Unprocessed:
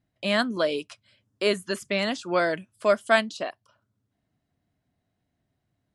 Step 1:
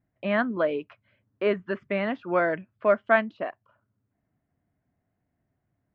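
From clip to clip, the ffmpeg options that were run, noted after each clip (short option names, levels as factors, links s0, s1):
-af "lowpass=f=2200:w=0.5412,lowpass=f=2200:w=1.3066"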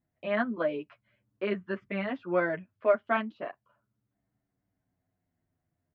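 -filter_complex "[0:a]asplit=2[s0][s1];[s1]adelay=9.3,afreqshift=-0.35[s2];[s0][s2]amix=inputs=2:normalize=1,volume=0.841"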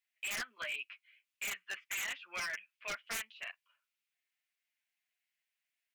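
-af "highpass=f=2500:t=q:w=3.4,aeval=exprs='0.0188*(abs(mod(val(0)/0.0188+3,4)-2)-1)':c=same,volume=1.26"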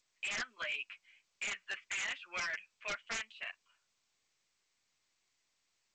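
-af "volume=1.12" -ar 16000 -c:a g722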